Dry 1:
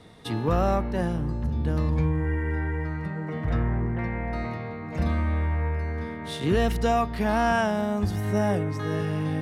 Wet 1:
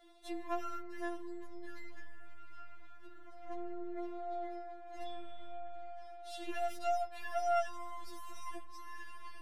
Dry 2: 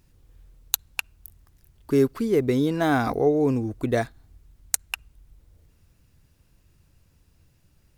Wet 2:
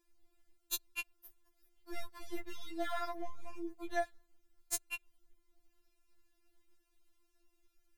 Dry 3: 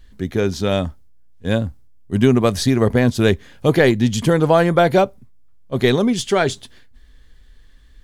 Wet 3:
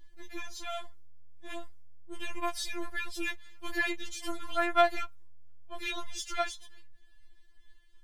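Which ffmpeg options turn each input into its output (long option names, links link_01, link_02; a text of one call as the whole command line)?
ffmpeg -i in.wav -filter_complex "[0:a]aeval=exprs='if(lt(val(0),0),0.708*val(0),val(0))':channel_layout=same,acrossover=split=130|790|6000[link_01][link_02][link_03][link_04];[link_02]acompressor=threshold=-34dB:ratio=8[link_05];[link_01][link_05][link_03][link_04]amix=inputs=4:normalize=0,afftfilt=real='re*4*eq(mod(b,16),0)':imag='im*4*eq(mod(b,16),0)':win_size=2048:overlap=0.75,volume=-7.5dB" out.wav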